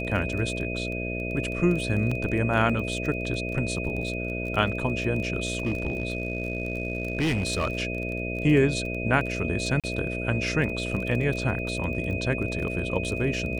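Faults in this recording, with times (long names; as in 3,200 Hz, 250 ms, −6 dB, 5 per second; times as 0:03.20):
mains buzz 60 Hz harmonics 11 −32 dBFS
surface crackle 20 per second −31 dBFS
whistle 2,500 Hz −33 dBFS
0:02.11: drop-out 4.7 ms
0:05.45–0:07.78: clipping −21 dBFS
0:09.80–0:09.84: drop-out 37 ms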